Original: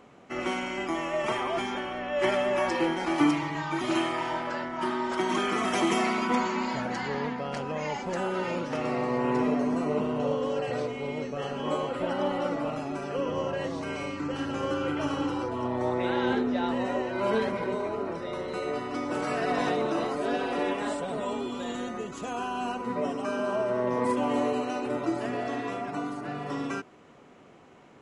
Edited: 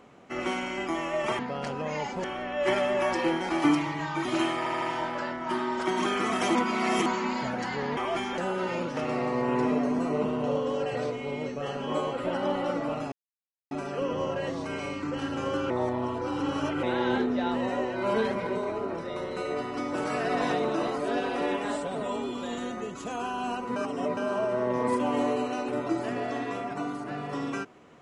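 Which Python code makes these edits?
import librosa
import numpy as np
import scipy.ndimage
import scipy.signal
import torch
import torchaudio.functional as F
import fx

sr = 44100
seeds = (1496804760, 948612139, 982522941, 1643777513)

y = fx.edit(x, sr, fx.swap(start_s=1.39, length_s=0.41, other_s=7.29, other_length_s=0.85),
    fx.stutter(start_s=4.14, slice_s=0.08, count=4),
    fx.reverse_span(start_s=5.87, length_s=0.51),
    fx.insert_silence(at_s=12.88, length_s=0.59),
    fx.reverse_span(start_s=14.87, length_s=1.13),
    fx.reverse_span(start_s=22.93, length_s=0.41), tone=tone)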